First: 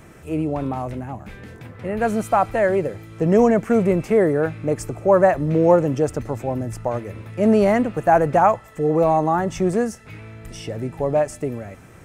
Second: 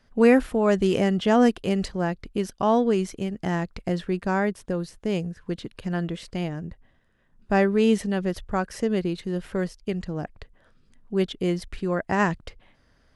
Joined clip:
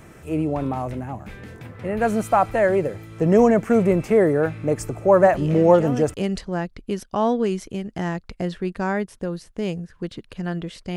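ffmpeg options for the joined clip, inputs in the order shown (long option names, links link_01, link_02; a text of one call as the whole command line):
ffmpeg -i cue0.wav -i cue1.wav -filter_complex "[1:a]asplit=2[link_01][link_02];[0:a]apad=whole_dur=10.96,atrim=end=10.96,atrim=end=6.142[link_03];[link_02]atrim=start=1.608:end=6.43[link_04];[link_01]atrim=start=0.69:end=1.61,asetpts=PTS-STARTPTS,volume=-11.5dB,afade=type=in:duration=0.004:curve=hsin,afade=type=out:start_time=0.916:duration=0.004:curve=hsin,adelay=5220[link_05];[link_03][link_04]acrossfade=duration=0.004:curve1=hsin:curve2=hsin[link_06];[link_06][link_05]amix=inputs=2:normalize=0" out.wav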